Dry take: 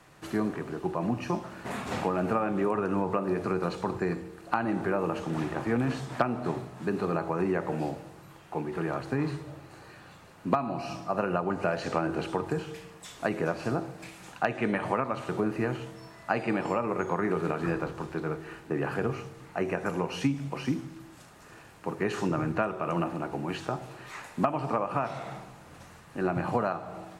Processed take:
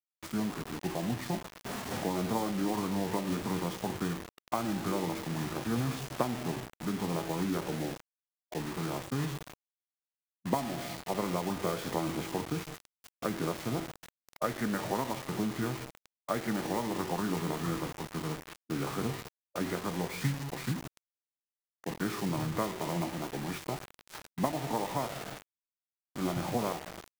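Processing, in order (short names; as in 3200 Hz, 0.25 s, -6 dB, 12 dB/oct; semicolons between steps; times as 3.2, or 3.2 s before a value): bit-crush 6-bit; formant shift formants -4 st; gain -4 dB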